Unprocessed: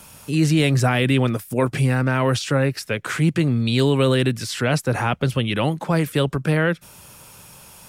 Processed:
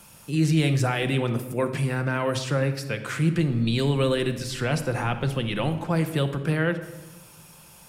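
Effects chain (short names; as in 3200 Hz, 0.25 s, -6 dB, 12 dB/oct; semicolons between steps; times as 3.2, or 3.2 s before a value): 3.33–5.81 added noise brown -41 dBFS; reverb RT60 1.2 s, pre-delay 6 ms, DRR 7 dB; gain -6 dB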